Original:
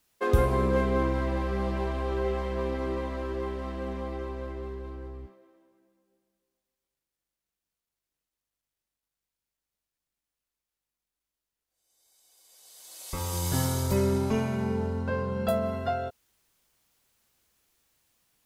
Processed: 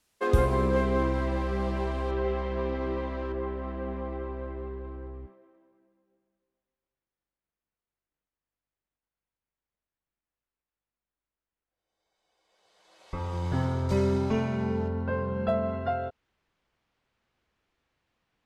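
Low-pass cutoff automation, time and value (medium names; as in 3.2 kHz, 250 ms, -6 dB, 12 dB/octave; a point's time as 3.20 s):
11 kHz
from 2.11 s 4 kHz
from 3.32 s 2.1 kHz
from 13.89 s 4.8 kHz
from 14.88 s 2.6 kHz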